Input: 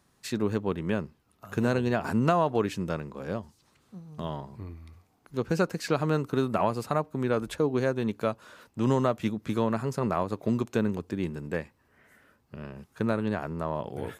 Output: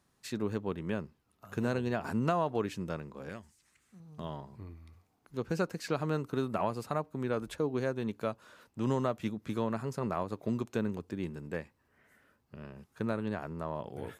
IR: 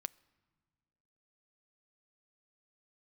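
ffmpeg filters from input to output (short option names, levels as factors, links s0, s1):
-filter_complex "[0:a]asettb=1/sr,asplit=3[s0][s1][s2];[s0]atrim=end=3.294[s3];[s1]atrim=start=3.29:end=4,asetpts=PTS-STARTPTS,afade=t=in:d=0.004:c=qsin,afade=t=out:st=0.706:d=0.004:c=qsin,equalizer=f=125:t=o:w=1:g=-7,equalizer=f=250:t=o:w=1:g=-3,equalizer=f=500:t=o:w=1:g=-7,equalizer=f=1000:t=o:w=1:g=-6,equalizer=f=2000:t=o:w=1:g=9,equalizer=f=4000:t=o:w=1:g=-5,equalizer=f=8000:t=o:w=1:g=9[s4];[s2]atrim=start=3.996[s5];[s3][s4]acrossfade=d=0.004:c1=hsin:c2=qsin[s6];[s6][s5]acrossfade=d=0.004:c1=qsin:c2=hsin,volume=0.501"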